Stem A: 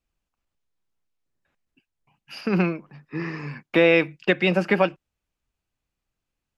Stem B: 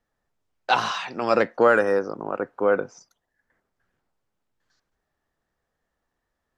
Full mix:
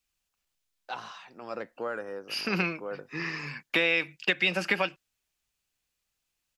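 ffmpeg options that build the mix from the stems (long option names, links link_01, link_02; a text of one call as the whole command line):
ffmpeg -i stem1.wav -i stem2.wav -filter_complex "[0:a]tiltshelf=frequency=1500:gain=-9,volume=0dB[link_01];[1:a]adelay=200,volume=-17dB[link_02];[link_01][link_02]amix=inputs=2:normalize=0,acompressor=threshold=-22dB:ratio=4" out.wav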